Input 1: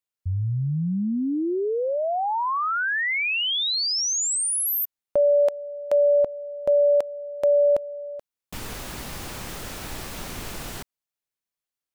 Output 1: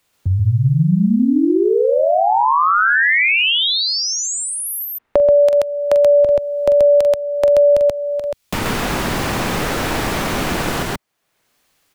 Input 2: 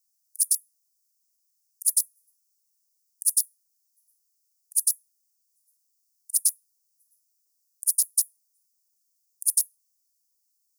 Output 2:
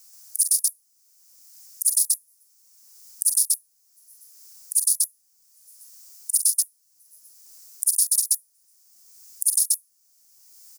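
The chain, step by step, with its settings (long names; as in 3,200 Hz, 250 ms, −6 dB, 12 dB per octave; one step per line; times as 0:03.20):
high-shelf EQ 5,700 Hz −6.5 dB
loudspeakers that aren't time-aligned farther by 15 metres −8 dB, 45 metres 0 dB
multiband upward and downward compressor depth 70%
level +6.5 dB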